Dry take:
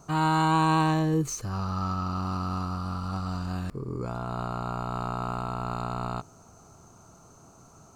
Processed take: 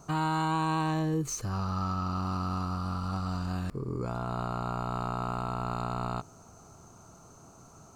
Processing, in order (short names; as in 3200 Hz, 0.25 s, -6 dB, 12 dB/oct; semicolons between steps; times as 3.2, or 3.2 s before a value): compressor 2.5:1, threshold -28 dBFS, peak gain reduction 6.5 dB